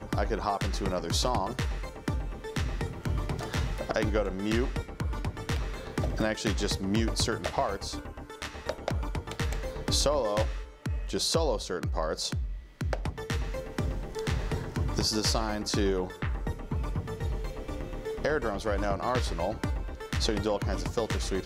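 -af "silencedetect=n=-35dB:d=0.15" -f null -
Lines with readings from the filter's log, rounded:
silence_start: 10.64
silence_end: 10.86 | silence_duration: 0.22
silence_start: 12.57
silence_end: 12.81 | silence_duration: 0.24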